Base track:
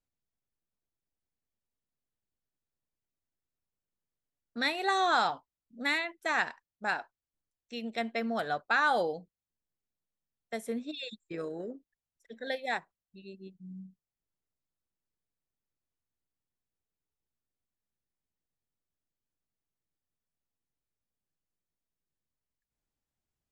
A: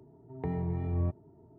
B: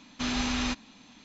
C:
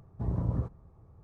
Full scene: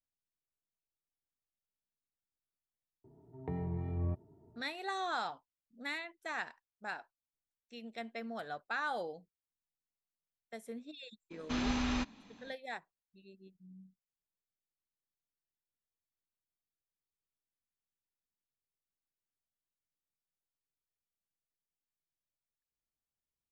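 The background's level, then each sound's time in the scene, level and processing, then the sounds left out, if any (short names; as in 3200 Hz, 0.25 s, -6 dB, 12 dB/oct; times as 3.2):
base track -10 dB
3.04 add A -5 dB
11.3 add B -3 dB, fades 0.02 s + high shelf 2500 Hz -9 dB
not used: C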